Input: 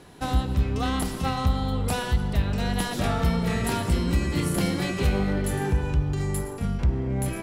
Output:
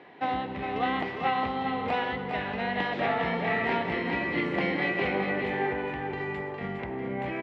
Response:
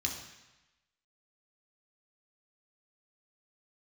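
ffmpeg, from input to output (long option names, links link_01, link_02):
-af "highpass=300,equalizer=frequency=770:width_type=q:width=4:gain=4,equalizer=frequency=1400:width_type=q:width=4:gain=-5,equalizer=frequency=2000:width_type=q:width=4:gain=9,lowpass=frequency=3000:width=0.5412,lowpass=frequency=3000:width=1.3066,aecho=1:1:408:0.501"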